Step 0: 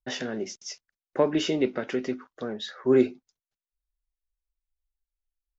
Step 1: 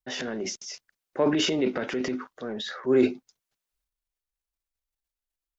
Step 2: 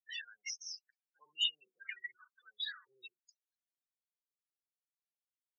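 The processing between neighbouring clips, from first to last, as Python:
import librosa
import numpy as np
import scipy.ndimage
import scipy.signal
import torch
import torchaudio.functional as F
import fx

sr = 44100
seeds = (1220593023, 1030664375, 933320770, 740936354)

y1 = fx.low_shelf(x, sr, hz=67.0, db=-10.0)
y1 = fx.transient(y1, sr, attack_db=-3, sustain_db=9)
y2 = fx.env_flanger(y1, sr, rest_ms=9.2, full_db=-23.0)
y2 = fx.spec_topn(y2, sr, count=16)
y2 = scipy.signal.sosfilt(scipy.signal.cheby2(4, 50, 680.0, 'highpass', fs=sr, output='sos'), y2)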